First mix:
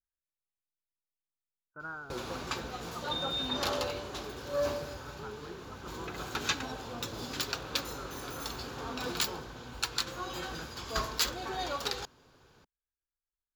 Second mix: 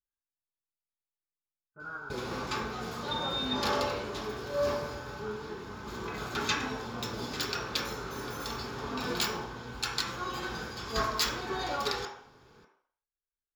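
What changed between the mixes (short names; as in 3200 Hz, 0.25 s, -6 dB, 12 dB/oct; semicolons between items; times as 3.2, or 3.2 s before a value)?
speech -3.5 dB; reverb: on, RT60 0.60 s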